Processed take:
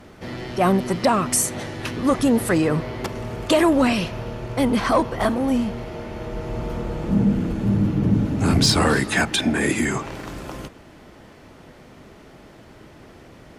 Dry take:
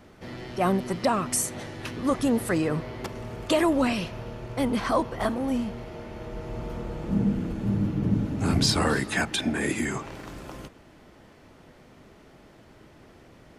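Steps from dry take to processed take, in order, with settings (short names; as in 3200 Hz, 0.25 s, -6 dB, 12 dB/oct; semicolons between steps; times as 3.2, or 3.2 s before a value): added harmonics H 5 -25 dB, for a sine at -10 dBFS; gain +4.5 dB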